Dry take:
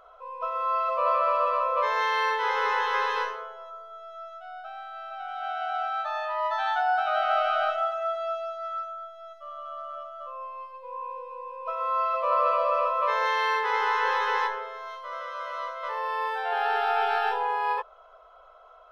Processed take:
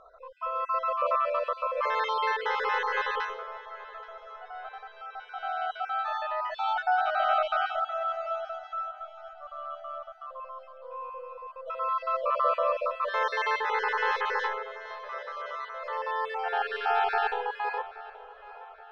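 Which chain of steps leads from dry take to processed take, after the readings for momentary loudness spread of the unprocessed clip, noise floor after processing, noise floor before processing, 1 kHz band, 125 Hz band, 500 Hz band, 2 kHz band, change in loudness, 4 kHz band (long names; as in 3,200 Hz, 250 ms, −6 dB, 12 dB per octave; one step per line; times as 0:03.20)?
16 LU, −50 dBFS, −52 dBFS, −3.0 dB, can't be measured, −2.0 dB, −1.5 dB, −2.5 dB, −2.5 dB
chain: time-frequency cells dropped at random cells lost 31%
Bessel low-pass filter 5,700 Hz, order 2
notch filter 1,000 Hz, Q 15
on a send: feedback echo with a low-pass in the loop 826 ms, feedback 50%, low-pass 4,200 Hz, level −17 dB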